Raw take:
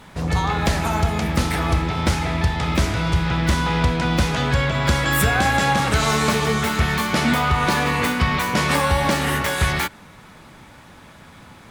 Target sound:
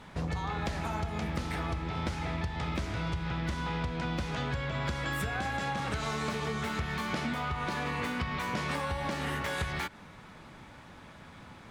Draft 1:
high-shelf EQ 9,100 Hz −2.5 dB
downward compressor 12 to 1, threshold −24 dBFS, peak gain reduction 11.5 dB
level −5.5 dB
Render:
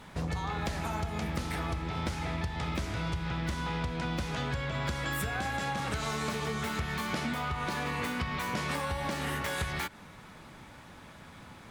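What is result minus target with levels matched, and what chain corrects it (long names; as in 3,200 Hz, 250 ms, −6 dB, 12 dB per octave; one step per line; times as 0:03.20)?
8,000 Hz band +3.5 dB
high-shelf EQ 9,100 Hz −13 dB
downward compressor 12 to 1, threshold −24 dBFS, peak gain reduction 11.5 dB
level −5.5 dB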